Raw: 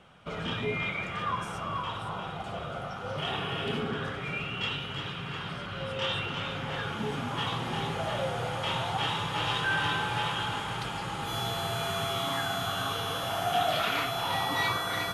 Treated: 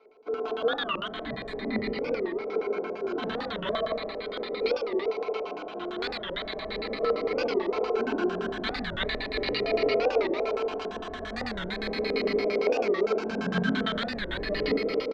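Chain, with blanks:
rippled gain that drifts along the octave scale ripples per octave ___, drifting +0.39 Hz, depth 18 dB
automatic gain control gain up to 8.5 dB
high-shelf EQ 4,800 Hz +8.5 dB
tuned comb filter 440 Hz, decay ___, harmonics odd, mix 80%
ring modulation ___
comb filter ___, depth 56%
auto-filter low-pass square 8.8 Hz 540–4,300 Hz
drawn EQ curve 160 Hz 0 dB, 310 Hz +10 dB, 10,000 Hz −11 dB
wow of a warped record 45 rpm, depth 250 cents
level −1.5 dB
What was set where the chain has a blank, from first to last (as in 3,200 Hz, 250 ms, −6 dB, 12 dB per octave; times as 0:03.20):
0.58, 0.16 s, 890 Hz, 4.6 ms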